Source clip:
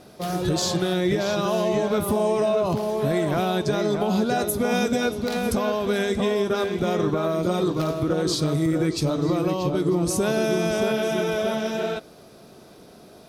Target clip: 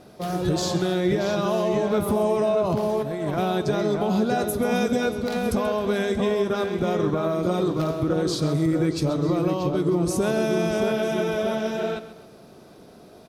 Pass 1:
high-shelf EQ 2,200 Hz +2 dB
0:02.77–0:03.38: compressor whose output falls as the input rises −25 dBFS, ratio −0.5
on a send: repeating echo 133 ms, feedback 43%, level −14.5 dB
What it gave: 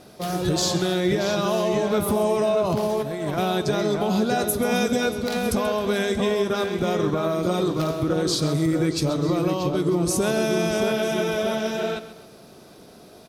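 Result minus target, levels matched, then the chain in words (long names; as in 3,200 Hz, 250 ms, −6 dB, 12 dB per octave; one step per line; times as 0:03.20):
4,000 Hz band +4.5 dB
high-shelf EQ 2,200 Hz −4.5 dB
0:02.77–0:03.38: compressor whose output falls as the input rises −25 dBFS, ratio −0.5
on a send: repeating echo 133 ms, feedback 43%, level −14.5 dB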